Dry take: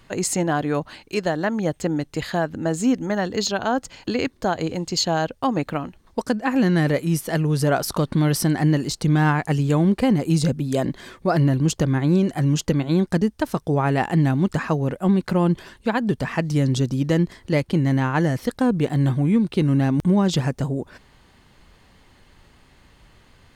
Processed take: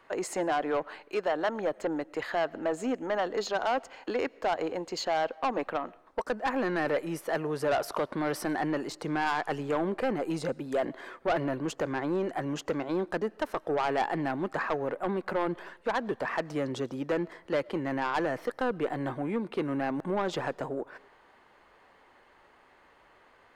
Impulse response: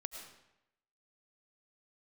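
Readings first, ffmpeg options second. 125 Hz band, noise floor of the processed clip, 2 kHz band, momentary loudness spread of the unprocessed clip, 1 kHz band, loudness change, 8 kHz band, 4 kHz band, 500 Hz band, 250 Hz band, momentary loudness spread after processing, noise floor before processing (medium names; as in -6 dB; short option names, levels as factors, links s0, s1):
-21.5 dB, -60 dBFS, -5.5 dB, 7 LU, -4.0 dB, -10.0 dB, -15.0 dB, -10.5 dB, -5.0 dB, -13.0 dB, 5 LU, -55 dBFS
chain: -filter_complex "[0:a]acrossover=split=370 2100:gain=0.0708 1 0.158[s0][s1][s2];[s0][s1][s2]amix=inputs=3:normalize=0,aeval=exprs='0.376*(cos(1*acos(clip(val(0)/0.376,-1,1)))-cos(1*PI/2))+0.00531*(cos(6*acos(clip(val(0)/0.376,-1,1)))-cos(6*PI/2))':c=same,asoftclip=type=tanh:threshold=0.0708,asplit=2[s3][s4];[1:a]atrim=start_sample=2205[s5];[s4][s5]afir=irnorm=-1:irlink=0,volume=0.158[s6];[s3][s6]amix=inputs=2:normalize=0"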